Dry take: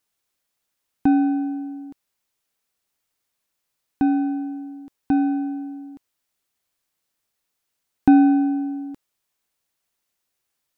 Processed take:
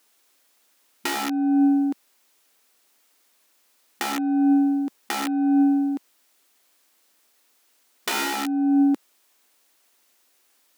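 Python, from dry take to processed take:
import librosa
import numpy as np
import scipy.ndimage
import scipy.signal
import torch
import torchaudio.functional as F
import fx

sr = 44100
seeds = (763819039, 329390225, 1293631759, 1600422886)

y = (np.mod(10.0 ** (16.0 / 20.0) * x + 1.0, 2.0) - 1.0) / 10.0 ** (16.0 / 20.0)
y = fx.over_compress(y, sr, threshold_db=-30.0, ratio=-1.0)
y = fx.brickwall_highpass(y, sr, low_hz=210.0)
y = F.gain(torch.from_numpy(y), 8.5).numpy()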